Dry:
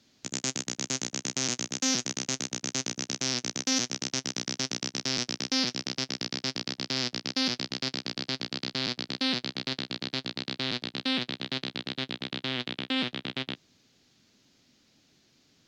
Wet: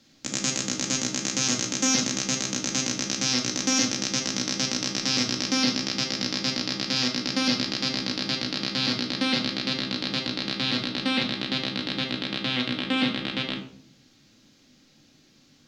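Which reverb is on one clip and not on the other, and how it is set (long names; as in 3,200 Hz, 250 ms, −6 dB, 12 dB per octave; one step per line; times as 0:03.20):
rectangular room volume 770 cubic metres, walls furnished, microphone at 2.2 metres
level +3 dB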